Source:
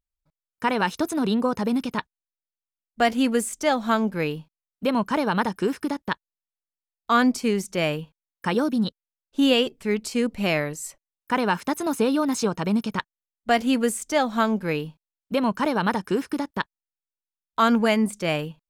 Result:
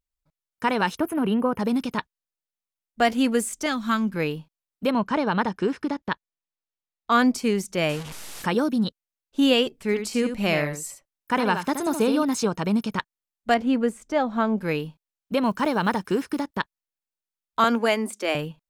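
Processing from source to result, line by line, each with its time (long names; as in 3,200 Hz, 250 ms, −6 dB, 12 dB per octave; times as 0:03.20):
0:00.97–0:01.60: gain on a spectral selection 3,300–9,300 Hz −17 dB
0:03.66–0:04.16: flat-topped bell 600 Hz −12 dB 1.3 octaves
0:04.91–0:07.12: high-frequency loss of the air 79 metres
0:07.89–0:08.46: linear delta modulator 64 kbit/s, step −31 dBFS
0:09.81–0:12.23: single-tap delay 74 ms −8 dB
0:13.54–0:14.58: low-pass filter 1,300 Hz 6 dB per octave
0:15.45–0:16.44: one scale factor per block 7 bits
0:17.64–0:18.35: Butterworth high-pass 240 Hz 48 dB per octave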